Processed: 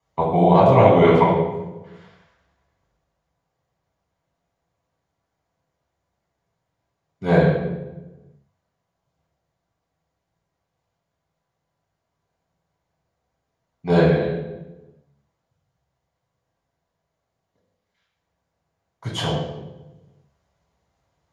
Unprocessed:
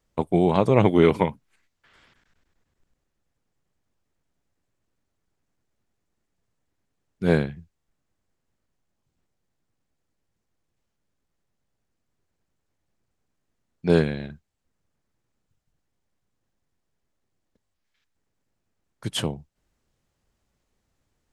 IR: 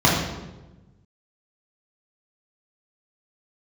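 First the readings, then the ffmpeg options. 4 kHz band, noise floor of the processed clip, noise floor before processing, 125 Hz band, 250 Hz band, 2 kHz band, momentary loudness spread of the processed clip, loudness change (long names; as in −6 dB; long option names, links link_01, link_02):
+2.5 dB, −79 dBFS, −78 dBFS, +5.5 dB, +3.0 dB, +4.5 dB, 20 LU, +4.5 dB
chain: -filter_complex "[0:a]lowshelf=frequency=390:width_type=q:width=1.5:gain=-9.5[link_01];[1:a]atrim=start_sample=2205[link_02];[link_01][link_02]afir=irnorm=-1:irlink=0,volume=-16.5dB"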